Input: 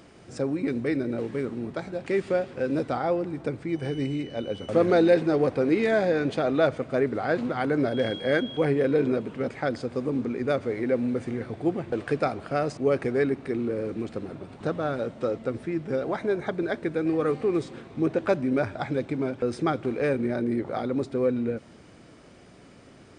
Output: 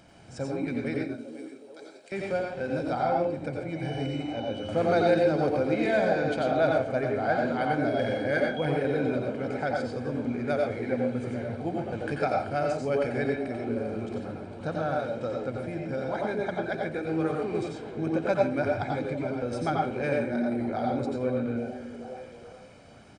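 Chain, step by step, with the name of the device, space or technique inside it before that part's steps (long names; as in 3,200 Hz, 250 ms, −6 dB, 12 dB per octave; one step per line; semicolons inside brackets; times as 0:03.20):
0:01.04–0:02.12: first difference
microphone above a desk (comb filter 1.3 ms, depth 54%; convolution reverb RT60 0.30 s, pre-delay 83 ms, DRR 0 dB)
echo through a band-pass that steps 426 ms, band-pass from 310 Hz, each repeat 0.7 octaves, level −9 dB
level −4.5 dB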